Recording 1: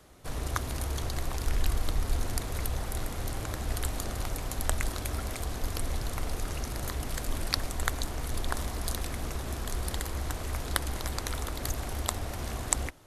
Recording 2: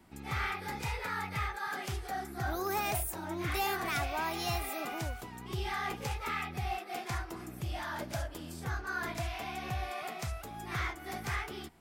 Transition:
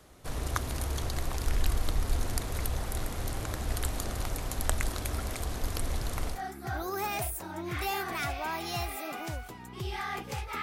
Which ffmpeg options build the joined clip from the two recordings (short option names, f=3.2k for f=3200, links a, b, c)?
-filter_complex "[0:a]apad=whole_dur=10.62,atrim=end=10.62,atrim=end=6.42,asetpts=PTS-STARTPTS[a];[1:a]atrim=start=2.01:end=6.35,asetpts=PTS-STARTPTS[b];[a][b]acrossfade=d=0.14:c1=tri:c2=tri"